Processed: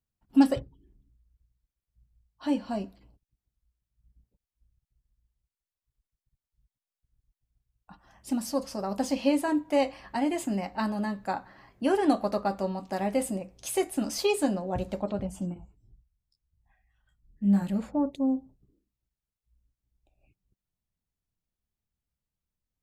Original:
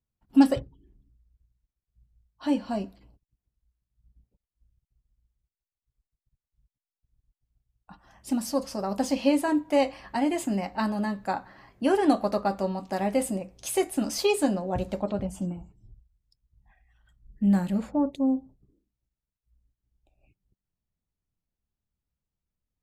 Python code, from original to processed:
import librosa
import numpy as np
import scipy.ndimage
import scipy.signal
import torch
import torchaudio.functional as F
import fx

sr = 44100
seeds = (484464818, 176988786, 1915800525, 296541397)

y = fx.detune_double(x, sr, cents=13, at=(15.54, 17.62))
y = y * librosa.db_to_amplitude(-2.0)